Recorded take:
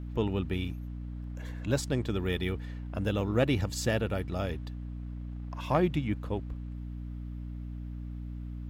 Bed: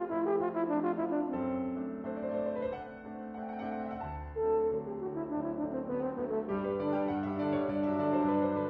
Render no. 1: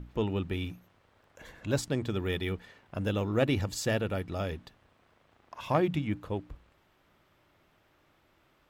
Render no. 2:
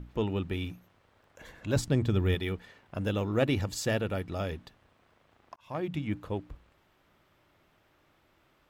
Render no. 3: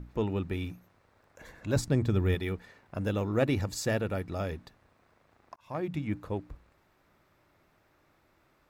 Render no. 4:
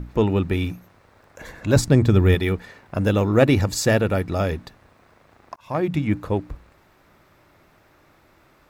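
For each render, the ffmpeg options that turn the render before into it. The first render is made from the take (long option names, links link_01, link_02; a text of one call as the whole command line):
ffmpeg -i in.wav -af "bandreject=frequency=60:width_type=h:width=6,bandreject=frequency=120:width_type=h:width=6,bandreject=frequency=180:width_type=h:width=6,bandreject=frequency=240:width_type=h:width=6,bandreject=frequency=300:width_type=h:width=6" out.wav
ffmpeg -i in.wav -filter_complex "[0:a]asettb=1/sr,asplit=3[link_01][link_02][link_03];[link_01]atrim=end=1.764[link_04];[link_02]atrim=start=1.76:end=2.35,asetpts=PTS-STARTPTS,afade=type=in:duration=0.004:curve=qsin,afade=type=out:start_time=0.586:duration=0.004:curve=qsin,lowshelf=frequency=170:gain=11.5[link_05];[link_03]atrim=start=2.346[link_06];[link_04][link_05]acrossfade=duration=0.004:curve1=hsin:curve2=qsin[link_07];[link_07][link_06]acrossfade=duration=0.004:curve1=qsin:curve2=hsin,asplit=2[link_08][link_09];[link_08]atrim=end=5.56,asetpts=PTS-STARTPTS,afade=type=out:start_time=5.556:duration=0.004:curve=hsin[link_10];[link_09]atrim=start=5.56,asetpts=PTS-STARTPTS,afade=type=in:duration=0.58[link_11];[link_10][link_11]concat=n=2:v=0:a=1" out.wav
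ffmpeg -i in.wav -af "equalizer=frequency=3100:width=3.9:gain=-8" out.wav
ffmpeg -i in.wav -af "volume=11dB" out.wav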